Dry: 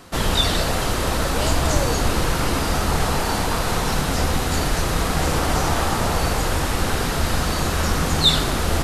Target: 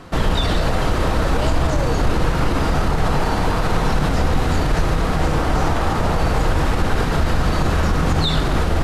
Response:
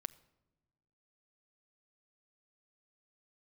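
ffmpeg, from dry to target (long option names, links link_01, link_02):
-filter_complex "[0:a]lowpass=frequency=2100:poles=1,alimiter=limit=-16dB:level=0:latency=1:release=59,asplit=2[link_01][link_02];[1:a]atrim=start_sample=2205,lowshelf=frequency=120:gain=5[link_03];[link_02][link_03]afir=irnorm=-1:irlink=0,volume=10.5dB[link_04];[link_01][link_04]amix=inputs=2:normalize=0,volume=-5dB"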